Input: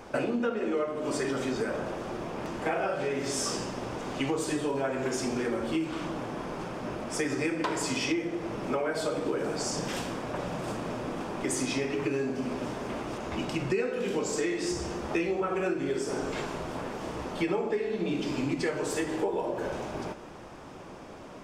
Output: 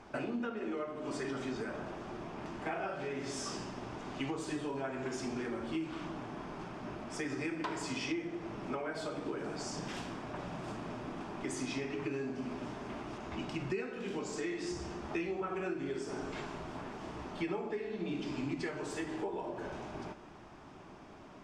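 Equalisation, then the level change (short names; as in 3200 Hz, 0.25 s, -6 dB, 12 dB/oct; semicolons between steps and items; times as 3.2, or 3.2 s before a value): air absorption 54 m; bell 510 Hz -10.5 dB 0.25 oct; -6.5 dB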